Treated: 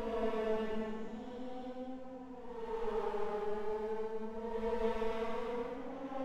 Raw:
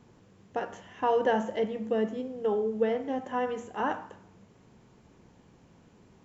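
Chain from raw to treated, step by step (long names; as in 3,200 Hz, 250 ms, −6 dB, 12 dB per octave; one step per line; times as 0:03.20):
half-wave rectification
extreme stretch with random phases 5.2×, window 0.25 s, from 0:01.90
level −5.5 dB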